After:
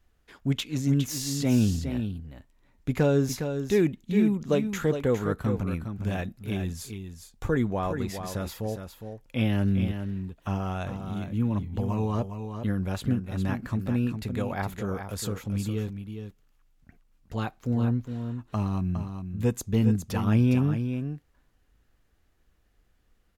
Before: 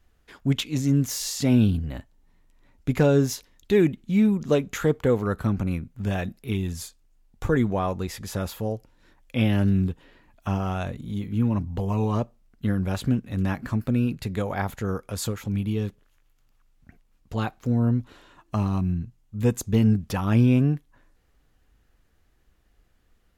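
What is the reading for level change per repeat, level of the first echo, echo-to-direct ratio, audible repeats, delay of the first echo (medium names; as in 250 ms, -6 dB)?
no regular repeats, -8.0 dB, -8.0 dB, 1, 410 ms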